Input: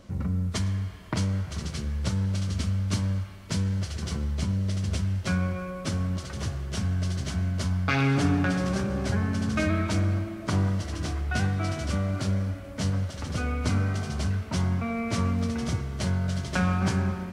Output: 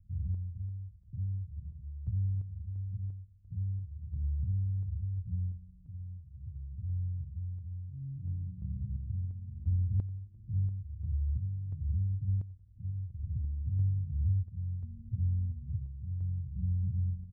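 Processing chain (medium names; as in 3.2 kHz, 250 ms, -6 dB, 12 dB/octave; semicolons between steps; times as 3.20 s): inverse Chebyshev low-pass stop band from 720 Hz, stop band 80 dB; random-step tremolo 2.9 Hz, depth 80%; on a send: feedback delay 90 ms, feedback 38%, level -21 dB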